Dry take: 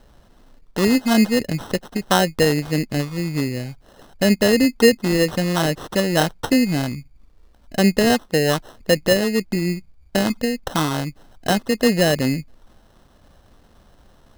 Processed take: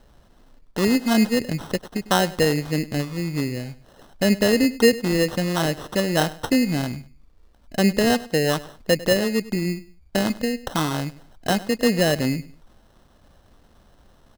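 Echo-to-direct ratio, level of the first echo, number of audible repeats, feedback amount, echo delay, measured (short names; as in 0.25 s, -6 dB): -18.0 dB, -18.5 dB, 2, 28%, 0.1 s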